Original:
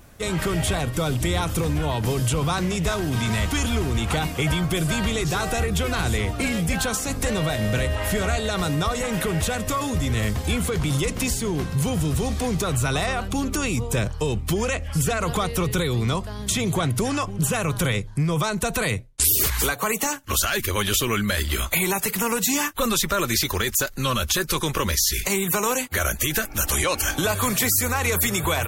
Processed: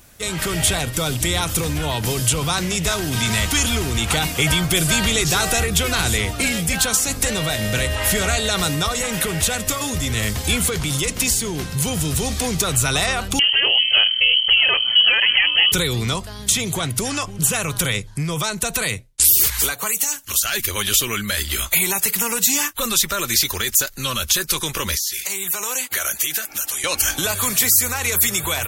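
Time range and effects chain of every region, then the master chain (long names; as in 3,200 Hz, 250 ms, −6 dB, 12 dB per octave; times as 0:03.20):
0:13.39–0:15.72: voice inversion scrambler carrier 3,100 Hz + mains-hum notches 50/100/150/200/250 Hz
0:19.87–0:20.45: parametric band 11,000 Hz +9 dB 2.8 octaves + downward compressor 2 to 1, threshold −26 dBFS + saturating transformer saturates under 570 Hz
0:24.97–0:26.84: high-pass filter 460 Hz 6 dB per octave + downward compressor 2.5 to 1, threshold −33 dBFS
whole clip: high-shelf EQ 2,000 Hz +11 dB; notch filter 1,100 Hz, Q 27; automatic gain control; level −3.5 dB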